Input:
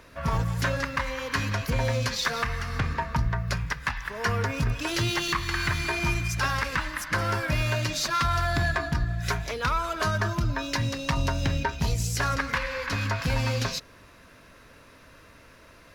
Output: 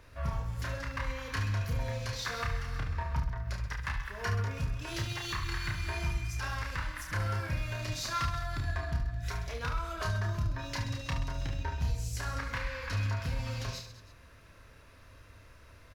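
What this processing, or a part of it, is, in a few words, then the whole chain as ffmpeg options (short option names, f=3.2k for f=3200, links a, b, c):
car stereo with a boomy subwoofer: -af "lowshelf=f=130:t=q:w=1.5:g=8,alimiter=limit=-17.5dB:level=0:latency=1:release=458,aecho=1:1:30|72|130.8|213.1|328.4:0.631|0.398|0.251|0.158|0.1,volume=-8.5dB"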